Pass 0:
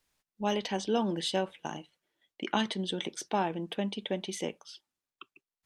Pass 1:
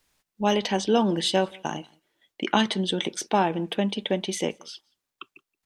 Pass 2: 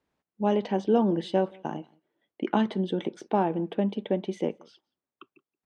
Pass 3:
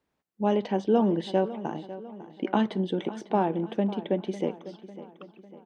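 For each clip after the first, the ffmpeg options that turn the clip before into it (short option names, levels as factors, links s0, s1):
-filter_complex "[0:a]asplit=2[s0][s1];[s1]adelay=174.9,volume=0.0447,highshelf=f=4000:g=-3.94[s2];[s0][s2]amix=inputs=2:normalize=0,volume=2.37"
-af "bandpass=f=310:t=q:w=0.52:csg=0"
-filter_complex "[0:a]asplit=2[s0][s1];[s1]adelay=550,lowpass=f=4800:p=1,volume=0.178,asplit=2[s2][s3];[s3]adelay=550,lowpass=f=4800:p=1,volume=0.51,asplit=2[s4][s5];[s5]adelay=550,lowpass=f=4800:p=1,volume=0.51,asplit=2[s6][s7];[s7]adelay=550,lowpass=f=4800:p=1,volume=0.51,asplit=2[s8][s9];[s9]adelay=550,lowpass=f=4800:p=1,volume=0.51[s10];[s0][s2][s4][s6][s8][s10]amix=inputs=6:normalize=0"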